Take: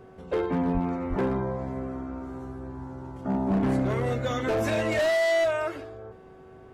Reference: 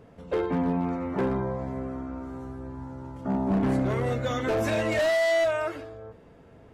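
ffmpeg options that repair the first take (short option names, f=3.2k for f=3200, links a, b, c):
-filter_complex "[0:a]bandreject=f=377.1:t=h:w=4,bandreject=f=754.2:t=h:w=4,bandreject=f=1.1313k:t=h:w=4,bandreject=f=1.5084k:t=h:w=4,asplit=3[a][b][c];[a]afade=t=out:st=0.73:d=0.02[d];[b]highpass=f=140:w=0.5412,highpass=f=140:w=1.3066,afade=t=in:st=0.73:d=0.02,afade=t=out:st=0.85:d=0.02[e];[c]afade=t=in:st=0.85:d=0.02[f];[d][e][f]amix=inputs=3:normalize=0,asplit=3[g][h][i];[g]afade=t=out:st=1.09:d=0.02[j];[h]highpass=f=140:w=0.5412,highpass=f=140:w=1.3066,afade=t=in:st=1.09:d=0.02,afade=t=out:st=1.21:d=0.02[k];[i]afade=t=in:st=1.21:d=0.02[l];[j][k][l]amix=inputs=3:normalize=0"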